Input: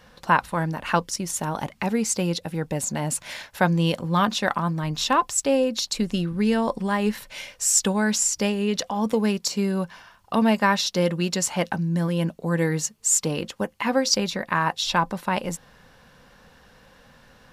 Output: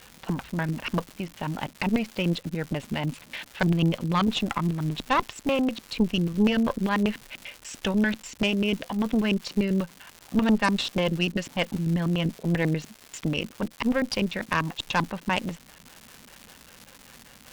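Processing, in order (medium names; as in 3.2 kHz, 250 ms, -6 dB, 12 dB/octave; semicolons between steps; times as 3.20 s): LFO low-pass square 5.1 Hz 260–2900 Hz; crackle 340 per s -30 dBFS; Chebyshev shaper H 5 -21 dB, 6 -16 dB, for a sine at -3.5 dBFS; trim -6.5 dB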